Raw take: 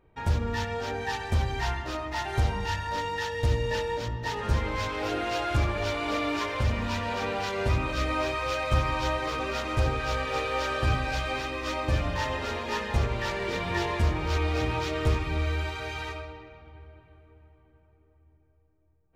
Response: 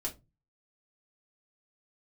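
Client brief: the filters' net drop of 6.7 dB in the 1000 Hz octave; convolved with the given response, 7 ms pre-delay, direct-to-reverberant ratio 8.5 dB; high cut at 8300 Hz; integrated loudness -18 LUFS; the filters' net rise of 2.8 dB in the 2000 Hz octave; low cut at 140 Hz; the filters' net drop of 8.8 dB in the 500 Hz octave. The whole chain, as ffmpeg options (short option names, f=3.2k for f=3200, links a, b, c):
-filter_complex "[0:a]highpass=140,lowpass=8.3k,equalizer=f=500:t=o:g=-9,equalizer=f=1k:t=o:g=-8,equalizer=f=2k:t=o:g=6,asplit=2[a][b];[1:a]atrim=start_sample=2205,adelay=7[c];[b][c]afir=irnorm=-1:irlink=0,volume=-9.5dB[d];[a][d]amix=inputs=2:normalize=0,volume=13dB"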